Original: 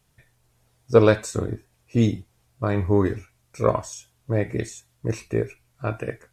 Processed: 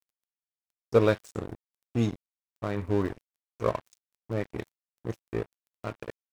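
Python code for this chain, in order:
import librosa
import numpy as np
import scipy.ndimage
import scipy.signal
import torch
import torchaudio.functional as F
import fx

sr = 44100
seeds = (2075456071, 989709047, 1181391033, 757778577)

y = fx.dmg_crackle(x, sr, seeds[0], per_s=37.0, level_db=-34.0)
y = np.sign(y) * np.maximum(np.abs(y) - 10.0 ** (-30.0 / 20.0), 0.0)
y = F.gain(torch.from_numpy(y), -5.5).numpy()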